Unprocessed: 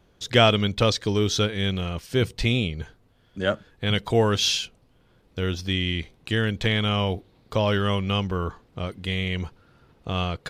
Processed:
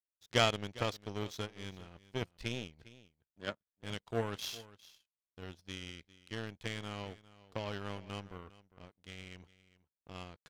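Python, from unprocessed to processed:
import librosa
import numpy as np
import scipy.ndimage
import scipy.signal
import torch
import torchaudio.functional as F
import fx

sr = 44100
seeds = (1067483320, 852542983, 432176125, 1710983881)

y = fx.power_curve(x, sr, exponent=2.0)
y = y + 10.0 ** (-18.5 / 20.0) * np.pad(y, (int(404 * sr / 1000.0), 0))[:len(y)]
y = F.gain(torch.from_numpy(y), -6.0).numpy()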